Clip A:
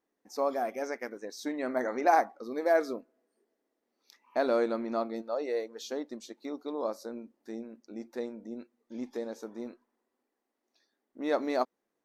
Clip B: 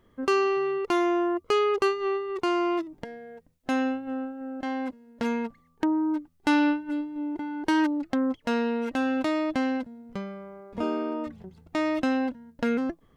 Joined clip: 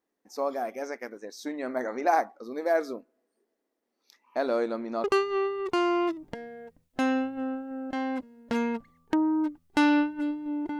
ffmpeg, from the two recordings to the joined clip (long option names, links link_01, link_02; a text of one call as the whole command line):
ffmpeg -i cue0.wav -i cue1.wav -filter_complex "[0:a]apad=whole_dur=10.79,atrim=end=10.79,atrim=end=5.042[link_01];[1:a]atrim=start=1.738:end=7.49[link_02];[link_01][link_02]acrossfade=duration=0.004:curve1=hsin:curve2=hsin" out.wav